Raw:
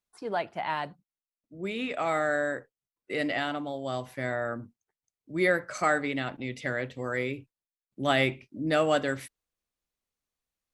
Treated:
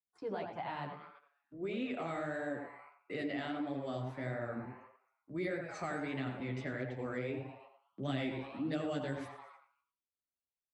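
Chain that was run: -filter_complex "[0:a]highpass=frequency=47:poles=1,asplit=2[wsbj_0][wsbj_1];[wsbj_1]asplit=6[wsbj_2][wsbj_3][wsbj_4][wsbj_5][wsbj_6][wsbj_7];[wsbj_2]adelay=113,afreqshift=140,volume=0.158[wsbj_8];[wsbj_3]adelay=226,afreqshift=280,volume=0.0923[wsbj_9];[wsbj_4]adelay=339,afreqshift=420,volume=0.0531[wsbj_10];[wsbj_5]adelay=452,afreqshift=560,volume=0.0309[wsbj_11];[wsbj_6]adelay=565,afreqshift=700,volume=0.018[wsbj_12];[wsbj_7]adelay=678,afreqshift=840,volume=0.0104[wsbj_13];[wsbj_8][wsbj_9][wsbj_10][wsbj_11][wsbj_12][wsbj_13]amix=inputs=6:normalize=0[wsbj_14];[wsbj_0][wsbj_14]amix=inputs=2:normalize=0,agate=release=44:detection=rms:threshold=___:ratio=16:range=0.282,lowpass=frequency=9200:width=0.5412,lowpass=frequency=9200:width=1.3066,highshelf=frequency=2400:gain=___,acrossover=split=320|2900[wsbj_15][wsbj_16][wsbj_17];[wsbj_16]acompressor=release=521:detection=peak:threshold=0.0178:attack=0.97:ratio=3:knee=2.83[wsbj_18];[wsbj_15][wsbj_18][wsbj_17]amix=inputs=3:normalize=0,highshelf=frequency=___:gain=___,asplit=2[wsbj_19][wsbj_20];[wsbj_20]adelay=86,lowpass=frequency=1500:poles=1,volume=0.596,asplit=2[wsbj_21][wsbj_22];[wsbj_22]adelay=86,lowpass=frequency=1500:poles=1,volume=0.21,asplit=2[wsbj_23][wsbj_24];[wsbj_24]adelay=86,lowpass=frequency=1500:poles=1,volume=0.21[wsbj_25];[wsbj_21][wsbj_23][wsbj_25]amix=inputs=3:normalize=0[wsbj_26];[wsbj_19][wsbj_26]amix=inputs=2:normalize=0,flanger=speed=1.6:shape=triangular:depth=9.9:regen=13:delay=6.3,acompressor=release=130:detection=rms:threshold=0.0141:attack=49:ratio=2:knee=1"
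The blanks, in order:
0.00178, -6, 5200, -7.5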